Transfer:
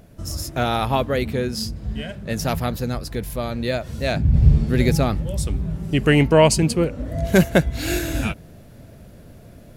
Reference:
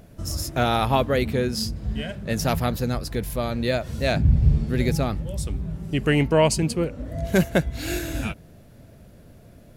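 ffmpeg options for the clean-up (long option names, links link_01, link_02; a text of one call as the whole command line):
ffmpeg -i in.wav -af "asetnsamples=nb_out_samples=441:pad=0,asendcmd='4.34 volume volume -4.5dB',volume=0dB" out.wav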